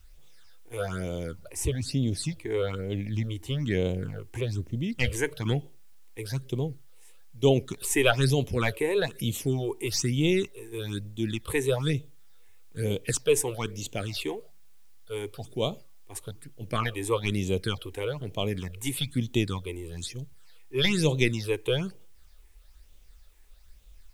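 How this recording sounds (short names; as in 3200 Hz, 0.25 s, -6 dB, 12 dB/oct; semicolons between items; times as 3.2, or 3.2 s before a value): phasing stages 8, 1.1 Hz, lowest notch 170–1600 Hz; a quantiser's noise floor 12-bit, dither triangular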